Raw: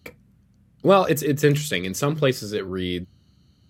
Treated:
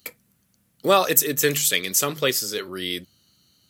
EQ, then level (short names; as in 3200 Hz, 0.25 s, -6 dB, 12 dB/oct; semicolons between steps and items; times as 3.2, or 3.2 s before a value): RIAA curve recording; 0.0 dB